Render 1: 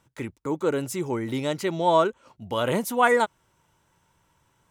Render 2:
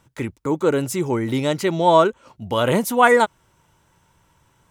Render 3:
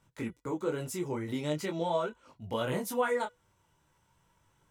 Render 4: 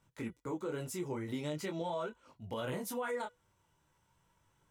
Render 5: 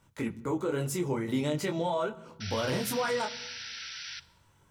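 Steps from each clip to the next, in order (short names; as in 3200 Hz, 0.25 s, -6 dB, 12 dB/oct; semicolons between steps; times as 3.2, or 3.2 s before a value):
low shelf 140 Hz +3.5 dB; gain +5.5 dB
compressor 3:1, threshold -19 dBFS, peak gain reduction 8 dB; resonator 490 Hz, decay 0.26 s, harmonics all, mix 40%; detuned doubles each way 15 cents; gain -2.5 dB
limiter -25.5 dBFS, peak gain reduction 7.5 dB; gain -3.5 dB
painted sound noise, 2.4–4.2, 1300–6000 Hz -49 dBFS; on a send at -16 dB: reverb RT60 1.1 s, pre-delay 3 ms; on the sum: gain +7.5 dB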